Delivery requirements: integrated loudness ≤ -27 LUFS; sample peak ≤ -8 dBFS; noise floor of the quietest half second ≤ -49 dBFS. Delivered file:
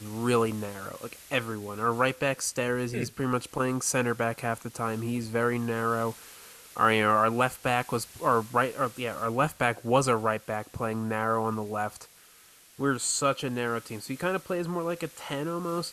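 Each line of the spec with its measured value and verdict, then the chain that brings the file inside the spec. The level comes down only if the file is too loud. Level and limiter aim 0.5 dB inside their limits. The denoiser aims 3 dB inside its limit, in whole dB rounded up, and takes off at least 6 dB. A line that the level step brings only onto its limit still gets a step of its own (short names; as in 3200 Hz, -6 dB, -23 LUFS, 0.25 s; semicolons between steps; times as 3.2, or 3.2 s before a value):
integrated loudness -28.5 LUFS: OK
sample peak -9.0 dBFS: OK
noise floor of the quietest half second -56 dBFS: OK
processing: none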